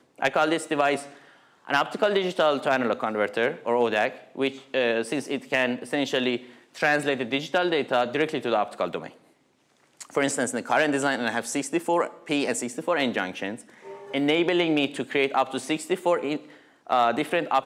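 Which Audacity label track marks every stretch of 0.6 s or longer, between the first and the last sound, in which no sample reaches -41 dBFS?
9.120000	10.000000	silence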